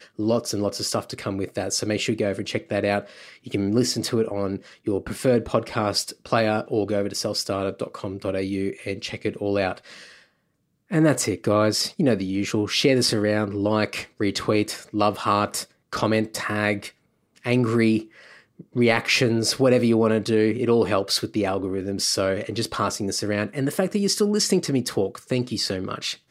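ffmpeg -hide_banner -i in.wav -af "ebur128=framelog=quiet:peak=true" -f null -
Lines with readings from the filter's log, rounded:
Integrated loudness:
  I:         -23.5 LUFS
  Threshold: -33.7 LUFS
Loudness range:
  LRA:         5.0 LU
  Threshold: -43.6 LUFS
  LRA low:   -26.1 LUFS
  LRA high:  -21.1 LUFS
True peak:
  Peak:       -5.1 dBFS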